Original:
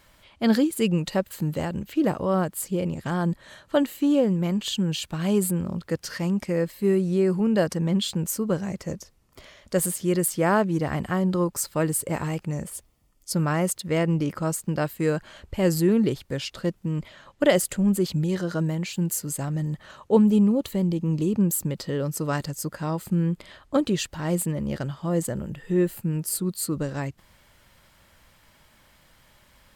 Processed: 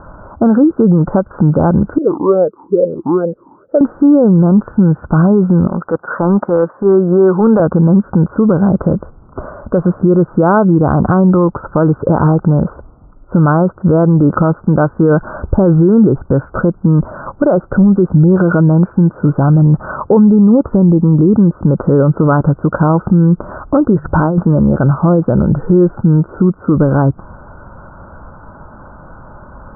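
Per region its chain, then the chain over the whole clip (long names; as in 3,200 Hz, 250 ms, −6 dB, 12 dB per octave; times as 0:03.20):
0:01.98–0:03.81: samples sorted by size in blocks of 8 samples + parametric band 1,500 Hz −10.5 dB 0.52 octaves + formant filter swept between two vowels e-u 2.3 Hz
0:05.67–0:07.60: meter weighting curve A + transient designer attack −10 dB, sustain −1 dB
0:23.96–0:24.38: mains-hum notches 50/100/150 Hz + compressor whose output falls as the input rises −33 dBFS
whole clip: Chebyshev low-pass filter 1,500 Hz, order 8; downward compressor 3 to 1, threshold −29 dBFS; boost into a limiter +26.5 dB; level −1 dB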